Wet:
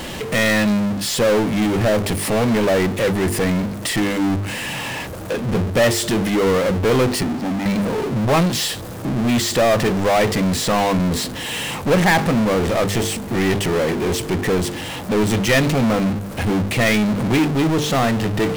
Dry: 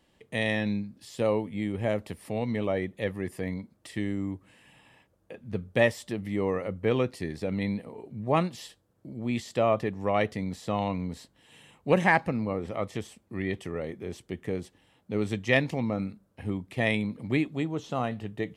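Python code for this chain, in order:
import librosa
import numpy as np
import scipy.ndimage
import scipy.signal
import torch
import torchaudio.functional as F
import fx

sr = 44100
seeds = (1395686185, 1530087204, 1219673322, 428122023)

y = fx.double_bandpass(x, sr, hz=460.0, octaves=1.7, at=(7.23, 7.66))
y = fx.hum_notches(y, sr, base_hz=50, count=9)
y = fx.power_curve(y, sr, exponent=0.35)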